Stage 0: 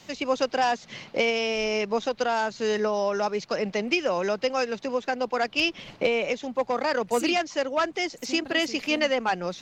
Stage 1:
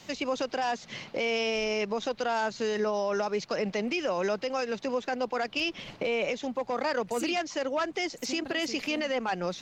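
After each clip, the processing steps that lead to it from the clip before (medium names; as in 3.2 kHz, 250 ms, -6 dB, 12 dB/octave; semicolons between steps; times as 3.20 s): peak limiter -20.5 dBFS, peak gain reduction 9.5 dB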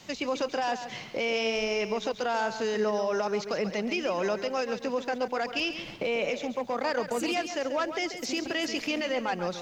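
bit-crushed delay 137 ms, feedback 35%, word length 10-bit, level -10 dB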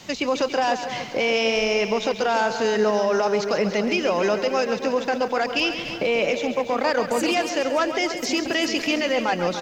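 feedback delay 289 ms, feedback 47%, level -11.5 dB; trim +7 dB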